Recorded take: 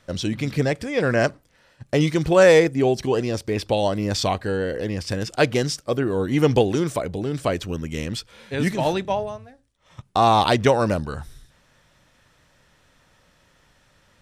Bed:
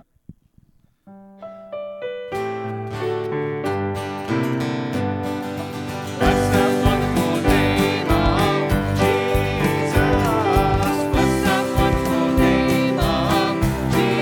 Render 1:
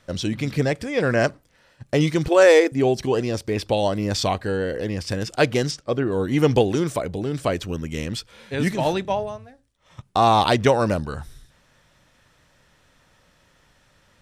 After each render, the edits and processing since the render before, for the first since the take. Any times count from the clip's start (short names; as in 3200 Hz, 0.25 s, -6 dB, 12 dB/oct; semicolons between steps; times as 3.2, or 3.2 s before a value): 2.28–2.72 brick-wall FIR high-pass 210 Hz; 5.71–6.12 air absorption 77 m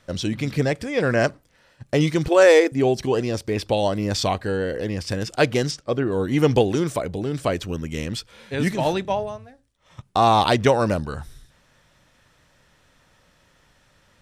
nothing audible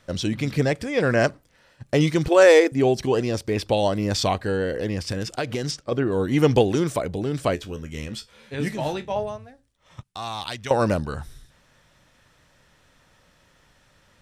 5.01–5.92 compressor 12:1, threshold -21 dBFS; 7.55–9.16 resonator 72 Hz, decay 0.17 s, mix 80%; 10.03–10.71 passive tone stack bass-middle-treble 5-5-5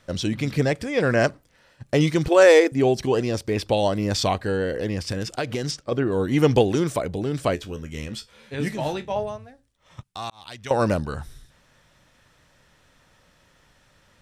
10.3–10.8 fade in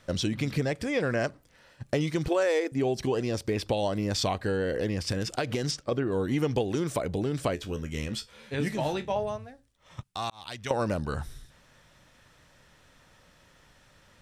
compressor 4:1, threshold -25 dBFS, peak gain reduction 13 dB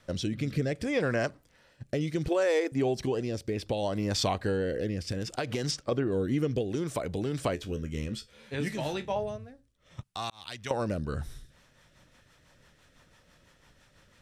rotary speaker horn 0.65 Hz, later 6 Hz, at 10.95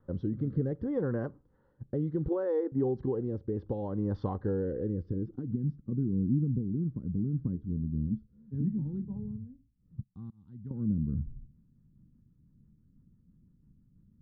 fixed phaser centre 2400 Hz, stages 6; low-pass sweep 640 Hz -> 210 Hz, 4.82–5.58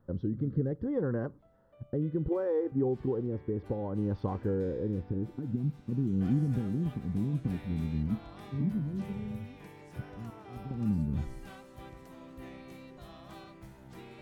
add bed -31 dB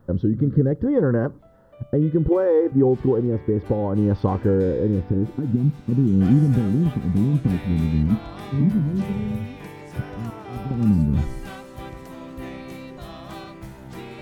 gain +12 dB